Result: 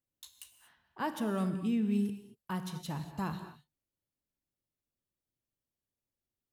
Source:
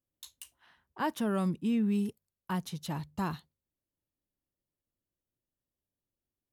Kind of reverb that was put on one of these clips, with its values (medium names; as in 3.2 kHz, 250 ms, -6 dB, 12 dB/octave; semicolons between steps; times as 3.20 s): gated-style reverb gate 260 ms flat, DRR 8 dB; trim -3 dB